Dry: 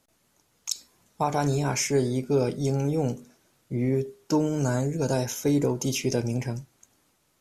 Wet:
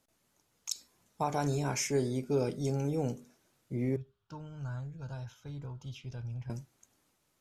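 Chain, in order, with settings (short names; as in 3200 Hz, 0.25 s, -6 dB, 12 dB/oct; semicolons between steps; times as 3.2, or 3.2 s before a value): 3.96–6.5 EQ curve 110 Hz 0 dB, 270 Hz -21 dB, 410 Hz -22 dB, 1400 Hz -5 dB, 2000 Hz -18 dB, 3300 Hz -7 dB, 6200 Hz -23 dB, 9600 Hz -28 dB; gain -6.5 dB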